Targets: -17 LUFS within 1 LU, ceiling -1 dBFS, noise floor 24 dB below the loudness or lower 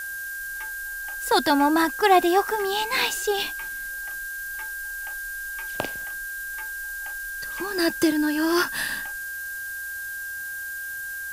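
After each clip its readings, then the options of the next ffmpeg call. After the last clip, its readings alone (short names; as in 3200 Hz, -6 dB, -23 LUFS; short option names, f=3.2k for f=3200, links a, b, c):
steady tone 1600 Hz; tone level -31 dBFS; noise floor -33 dBFS; noise floor target -50 dBFS; loudness -25.5 LUFS; peak -5.5 dBFS; loudness target -17.0 LUFS
-> -af "bandreject=f=1.6k:w=30"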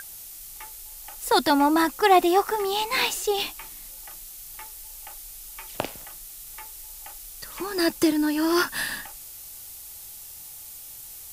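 steady tone none; noise floor -42 dBFS; noise floor target -47 dBFS
-> -af "afftdn=nr=6:nf=-42"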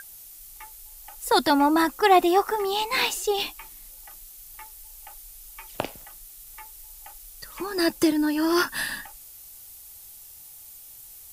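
noise floor -46 dBFS; noise floor target -48 dBFS
-> -af "afftdn=nr=6:nf=-46"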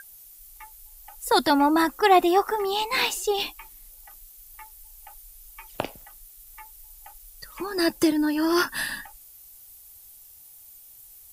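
noise floor -49 dBFS; loudness -23.5 LUFS; peak -6.0 dBFS; loudness target -17.0 LUFS
-> -af "volume=6.5dB,alimiter=limit=-1dB:level=0:latency=1"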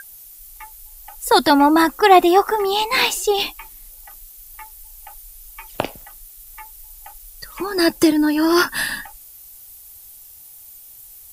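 loudness -17.0 LUFS; peak -1.0 dBFS; noise floor -43 dBFS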